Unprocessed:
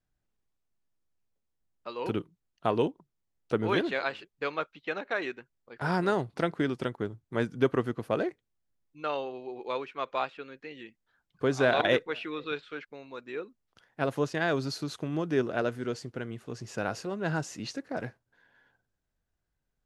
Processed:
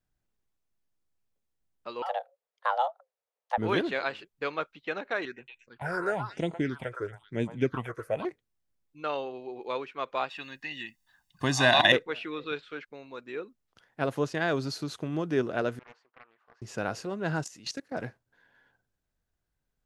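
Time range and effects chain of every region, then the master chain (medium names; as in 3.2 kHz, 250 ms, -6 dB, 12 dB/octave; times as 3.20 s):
2.02–3.58 s: high-pass 140 Hz 6 dB/octave + treble shelf 2.9 kHz -8 dB + frequency shift +380 Hz
5.25–8.25 s: band-stop 1.2 kHz + repeats whose band climbs or falls 114 ms, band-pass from 1.1 kHz, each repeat 1.4 oct, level -1 dB + phase shifter stages 6, 1 Hz, lowest notch 210–1500 Hz
10.30–11.92 s: treble shelf 2.1 kHz +11.5 dB + comb 1.1 ms, depth 84%
15.79–16.62 s: ladder band-pass 1.2 kHz, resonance 45% + loudspeaker Doppler distortion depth 0.51 ms
17.44–17.92 s: treble shelf 2.5 kHz +10.5 dB + level held to a coarse grid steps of 17 dB
whole clip: none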